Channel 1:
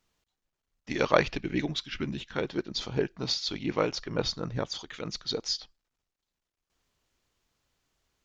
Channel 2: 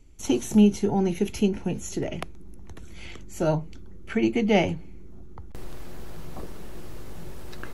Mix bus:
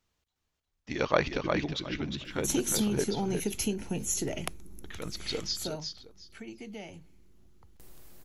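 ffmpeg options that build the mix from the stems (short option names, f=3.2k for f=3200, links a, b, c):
-filter_complex "[0:a]equalizer=f=77:w=1.5:g=6,volume=-3dB,asplit=3[a][b][c];[a]atrim=end=3.04,asetpts=PTS-STARTPTS,afade=t=out:st=3.036:d=0.004:c=hsin[d];[b]atrim=start=3.04:end=4.84,asetpts=PTS-STARTPTS,volume=0[e];[c]atrim=start=4.84,asetpts=PTS-STARTPTS,afade=t=in:d=0.004:c=hsin[f];[d][e][f]concat=n=3:v=0:a=1,asplit=2[g][h];[h]volume=-5dB[i];[1:a]acompressor=threshold=-23dB:ratio=6,aemphasis=mode=production:type=75kf,adelay=2250,volume=-4dB,afade=t=out:st=5.36:d=0.52:silence=0.223872[j];[i]aecho=0:1:358|716|1074:1|0.2|0.04[k];[g][j][k]amix=inputs=3:normalize=0"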